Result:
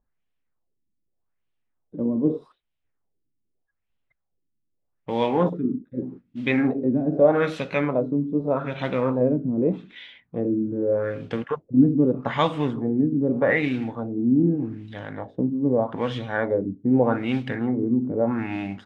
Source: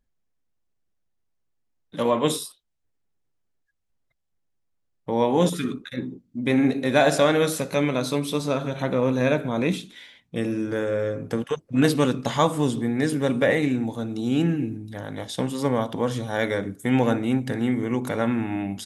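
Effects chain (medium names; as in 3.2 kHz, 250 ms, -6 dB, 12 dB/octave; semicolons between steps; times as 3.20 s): modulation noise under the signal 23 dB; LFO low-pass sine 0.82 Hz 250–3100 Hz; trim -2 dB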